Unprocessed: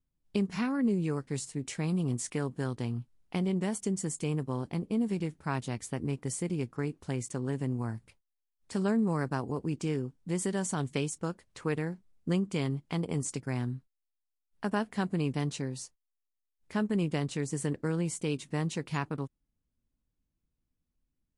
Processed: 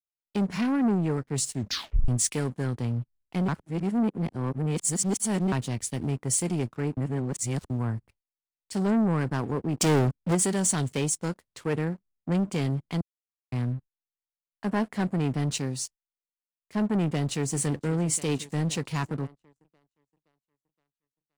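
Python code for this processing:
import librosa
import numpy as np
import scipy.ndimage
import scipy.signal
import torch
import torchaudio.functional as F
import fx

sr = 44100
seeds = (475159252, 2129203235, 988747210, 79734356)

y = fx.leveller(x, sr, passes=3, at=(9.8, 10.35))
y = fx.echo_throw(y, sr, start_s=17.04, length_s=0.52, ms=520, feedback_pct=80, wet_db=-17.5)
y = fx.edit(y, sr, fx.tape_stop(start_s=1.53, length_s=0.55),
    fx.reverse_span(start_s=3.48, length_s=2.04),
    fx.reverse_span(start_s=6.97, length_s=0.73),
    fx.silence(start_s=13.01, length_s=0.51), tone=tone)
y = fx.leveller(y, sr, passes=3)
y = fx.band_widen(y, sr, depth_pct=70)
y = y * librosa.db_to_amplitude(-3.5)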